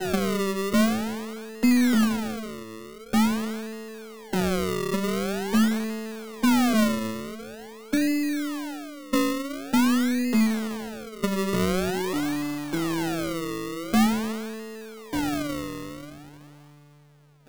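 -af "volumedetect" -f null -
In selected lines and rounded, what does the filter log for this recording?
mean_volume: -26.0 dB
max_volume: -11.3 dB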